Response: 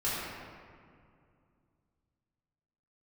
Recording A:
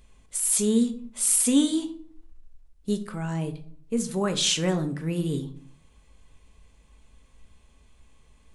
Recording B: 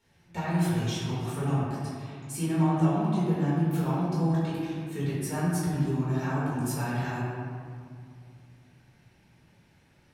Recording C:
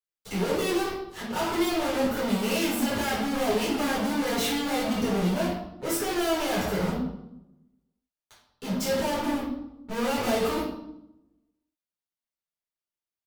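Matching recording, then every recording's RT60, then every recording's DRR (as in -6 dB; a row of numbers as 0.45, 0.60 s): B; 0.55, 2.3, 0.85 s; 6.5, -10.0, -8.5 dB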